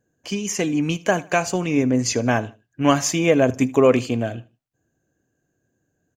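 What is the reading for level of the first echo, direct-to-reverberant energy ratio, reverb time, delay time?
−21.0 dB, no reverb audible, no reverb audible, 77 ms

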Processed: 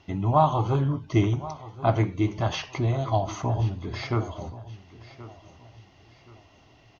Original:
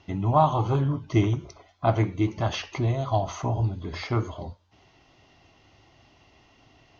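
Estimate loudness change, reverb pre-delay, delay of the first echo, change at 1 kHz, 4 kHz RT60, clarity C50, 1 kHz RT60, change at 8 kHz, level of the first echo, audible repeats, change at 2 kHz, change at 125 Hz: 0.0 dB, no reverb audible, 1,076 ms, 0.0 dB, no reverb audible, no reverb audible, no reverb audible, can't be measured, −17.0 dB, 3, 0.0 dB, 0.0 dB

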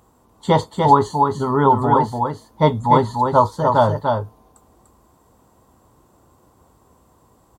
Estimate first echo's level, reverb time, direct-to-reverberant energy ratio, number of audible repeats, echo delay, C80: −4.5 dB, no reverb audible, no reverb audible, 1, 295 ms, no reverb audible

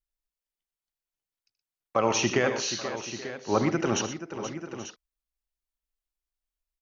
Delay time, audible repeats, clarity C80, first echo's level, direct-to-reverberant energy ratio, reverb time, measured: 78 ms, 5, no reverb audible, −13.5 dB, no reverb audible, no reverb audible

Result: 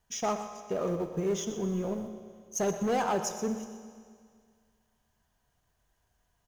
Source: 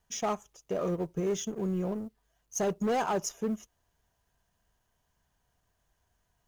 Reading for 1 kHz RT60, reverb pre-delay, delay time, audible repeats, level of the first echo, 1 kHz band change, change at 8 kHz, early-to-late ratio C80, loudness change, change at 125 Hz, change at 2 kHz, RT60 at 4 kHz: 2.0 s, 8 ms, 123 ms, 1, −12.5 dB, +1.0 dB, +1.0 dB, 8.5 dB, +0.5 dB, −0.5 dB, +0.5 dB, 1.9 s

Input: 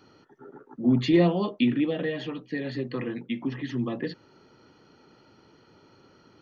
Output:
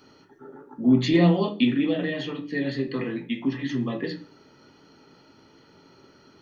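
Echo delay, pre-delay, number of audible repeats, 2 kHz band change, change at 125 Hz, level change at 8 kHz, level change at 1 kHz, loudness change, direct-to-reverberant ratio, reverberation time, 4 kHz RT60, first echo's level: no echo audible, 3 ms, no echo audible, +3.5 dB, +3.5 dB, can't be measured, +2.0 dB, +2.5 dB, 2.5 dB, 0.40 s, 0.45 s, no echo audible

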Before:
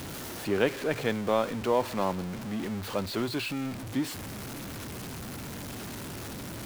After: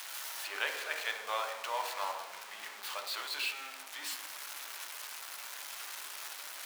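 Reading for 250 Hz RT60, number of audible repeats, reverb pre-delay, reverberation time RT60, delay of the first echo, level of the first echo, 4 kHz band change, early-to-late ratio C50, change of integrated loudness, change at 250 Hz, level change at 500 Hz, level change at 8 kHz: 1.5 s, no echo audible, 3 ms, 1.2 s, no echo audible, no echo audible, +0.5 dB, 6.5 dB, −6.0 dB, −32.5 dB, −15.5 dB, 0.0 dB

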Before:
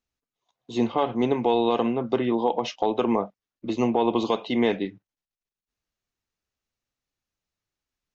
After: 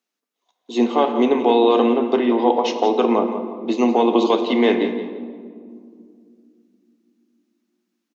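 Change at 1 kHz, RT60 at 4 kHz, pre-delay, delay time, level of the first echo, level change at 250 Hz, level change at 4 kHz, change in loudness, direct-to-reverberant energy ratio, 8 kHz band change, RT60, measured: +6.5 dB, 1.1 s, 3 ms, 173 ms, −12.0 dB, +6.5 dB, +6.0 dB, +6.5 dB, 6.5 dB, can't be measured, 2.2 s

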